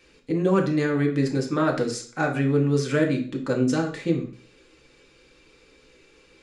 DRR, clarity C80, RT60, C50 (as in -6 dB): 0.5 dB, 13.5 dB, 0.45 s, 9.5 dB